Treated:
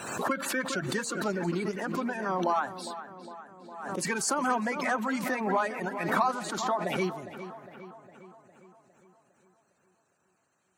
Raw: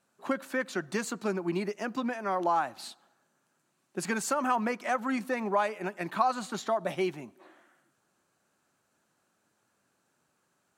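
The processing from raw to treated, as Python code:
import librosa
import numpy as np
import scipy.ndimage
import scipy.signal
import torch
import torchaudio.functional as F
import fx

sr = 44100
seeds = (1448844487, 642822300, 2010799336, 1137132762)

y = fx.spec_quant(x, sr, step_db=30)
y = fx.echo_filtered(y, sr, ms=407, feedback_pct=58, hz=3500.0, wet_db=-12.5)
y = fx.pre_swell(y, sr, db_per_s=51.0)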